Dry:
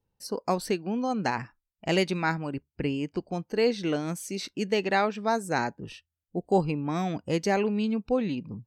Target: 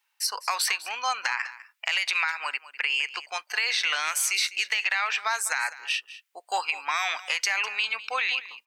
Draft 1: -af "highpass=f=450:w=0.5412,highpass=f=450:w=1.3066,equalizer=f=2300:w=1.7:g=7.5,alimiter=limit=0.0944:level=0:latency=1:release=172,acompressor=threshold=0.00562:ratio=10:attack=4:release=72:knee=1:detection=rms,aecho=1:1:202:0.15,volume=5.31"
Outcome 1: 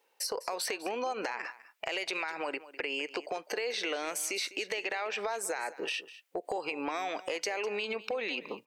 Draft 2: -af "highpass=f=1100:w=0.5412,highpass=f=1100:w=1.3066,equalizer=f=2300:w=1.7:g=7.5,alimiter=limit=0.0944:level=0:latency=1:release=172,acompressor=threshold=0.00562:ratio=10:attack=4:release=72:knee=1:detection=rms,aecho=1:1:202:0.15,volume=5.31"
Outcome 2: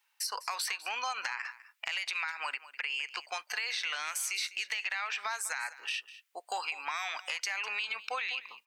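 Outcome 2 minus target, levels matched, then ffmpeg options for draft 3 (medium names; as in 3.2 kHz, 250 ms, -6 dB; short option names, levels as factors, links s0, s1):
compression: peak gain reduction +9 dB
-af "highpass=f=1100:w=0.5412,highpass=f=1100:w=1.3066,equalizer=f=2300:w=1.7:g=7.5,alimiter=limit=0.0944:level=0:latency=1:release=172,acompressor=threshold=0.0178:ratio=10:attack=4:release=72:knee=1:detection=rms,aecho=1:1:202:0.15,volume=5.31"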